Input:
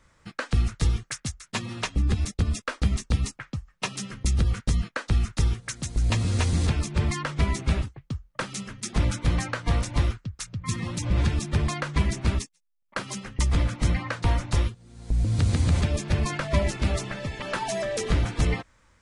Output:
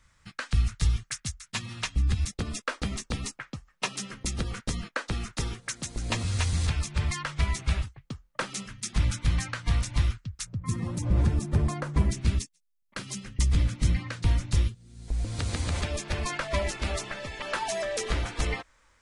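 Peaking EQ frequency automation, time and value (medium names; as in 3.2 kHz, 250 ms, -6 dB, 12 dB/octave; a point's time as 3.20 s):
peaking EQ -11.5 dB 2.4 oct
420 Hz
from 2.33 s 68 Hz
from 6.23 s 310 Hz
from 8.05 s 66 Hz
from 8.66 s 470 Hz
from 10.45 s 3.2 kHz
from 12.11 s 810 Hz
from 15.08 s 140 Hz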